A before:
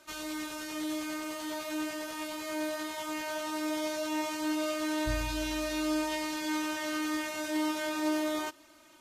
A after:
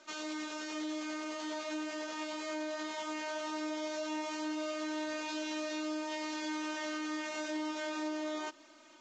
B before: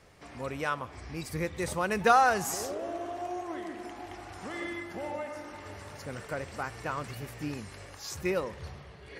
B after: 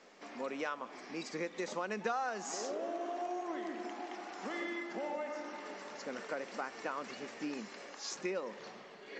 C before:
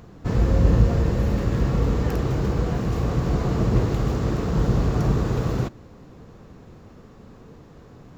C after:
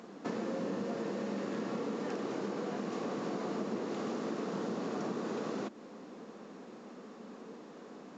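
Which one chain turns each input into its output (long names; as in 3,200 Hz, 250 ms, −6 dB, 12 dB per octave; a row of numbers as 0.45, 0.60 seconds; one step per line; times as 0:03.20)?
Chebyshev high-pass filter 210 Hz, order 4
downward compressor 4 to 1, threshold −35 dBFS
A-law companding 128 kbit/s 16,000 Hz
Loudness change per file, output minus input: −4.5, −8.0, −14.5 LU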